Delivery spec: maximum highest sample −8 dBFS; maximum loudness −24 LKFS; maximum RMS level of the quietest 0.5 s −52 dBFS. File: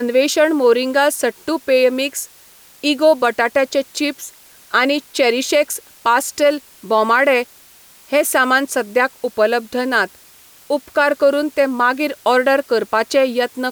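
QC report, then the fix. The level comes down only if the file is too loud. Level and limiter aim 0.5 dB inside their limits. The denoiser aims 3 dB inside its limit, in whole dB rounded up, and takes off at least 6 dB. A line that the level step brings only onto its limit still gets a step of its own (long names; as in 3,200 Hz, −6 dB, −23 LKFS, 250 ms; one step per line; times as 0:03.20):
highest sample −4.0 dBFS: out of spec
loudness −16.5 LKFS: out of spec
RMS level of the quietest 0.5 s −46 dBFS: out of spec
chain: level −8 dB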